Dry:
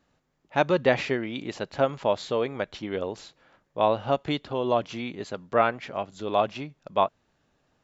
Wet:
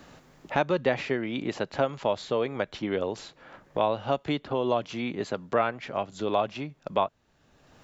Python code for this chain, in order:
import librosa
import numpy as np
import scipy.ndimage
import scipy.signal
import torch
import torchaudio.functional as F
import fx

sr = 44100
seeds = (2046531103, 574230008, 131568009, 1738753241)

y = fx.band_squash(x, sr, depth_pct=70)
y = y * 10.0 ** (-2.0 / 20.0)